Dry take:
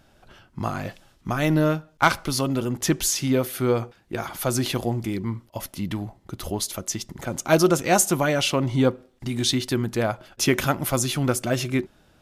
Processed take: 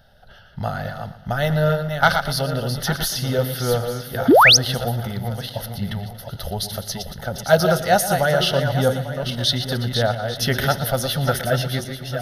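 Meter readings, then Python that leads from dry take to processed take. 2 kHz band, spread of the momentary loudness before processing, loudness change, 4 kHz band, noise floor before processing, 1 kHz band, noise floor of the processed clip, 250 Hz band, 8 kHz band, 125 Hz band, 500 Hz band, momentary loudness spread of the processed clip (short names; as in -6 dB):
+7.5 dB, 13 LU, +4.0 dB, +8.0 dB, -59 dBFS, +6.0 dB, -44 dBFS, -1.5 dB, -0.5 dB, +4.0 dB, +4.5 dB, 13 LU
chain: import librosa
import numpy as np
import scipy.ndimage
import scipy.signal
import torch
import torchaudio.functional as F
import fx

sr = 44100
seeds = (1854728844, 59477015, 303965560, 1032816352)

y = fx.reverse_delay_fb(x, sr, ms=423, feedback_pct=41, wet_db=-6.5)
y = fx.fixed_phaser(y, sr, hz=1600.0, stages=8)
y = fx.echo_feedback(y, sr, ms=117, feedback_pct=46, wet_db=-14.0)
y = fx.spec_paint(y, sr, seeds[0], shape='rise', start_s=4.28, length_s=0.29, low_hz=220.0, high_hz=6800.0, level_db=-15.0)
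y = y * librosa.db_to_amplitude(5.0)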